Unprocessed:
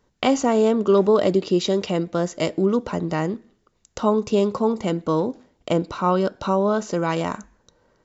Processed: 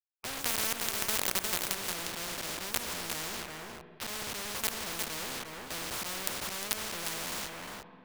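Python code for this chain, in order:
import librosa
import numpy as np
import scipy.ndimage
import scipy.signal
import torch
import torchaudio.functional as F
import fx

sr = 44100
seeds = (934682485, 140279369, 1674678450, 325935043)

p1 = fx.spec_trails(x, sr, decay_s=0.39)
p2 = scipy.signal.sosfilt(scipy.signal.butter(2, 1500.0, 'lowpass', fs=sr, output='sos'), p1)
p3 = fx.low_shelf(p2, sr, hz=260.0, db=-2.5)
p4 = fx.auto_swell(p3, sr, attack_ms=168.0)
p5 = fx.quant_companded(p4, sr, bits=2)
p6 = p5 + fx.echo_single(p5, sr, ms=355, db=-11.0, dry=0)
p7 = fx.rev_spring(p6, sr, rt60_s=2.2, pass_ms=(43, 58), chirp_ms=80, drr_db=17.0)
p8 = fx.spectral_comp(p7, sr, ratio=4.0)
y = p8 * librosa.db_to_amplitude(-3.5)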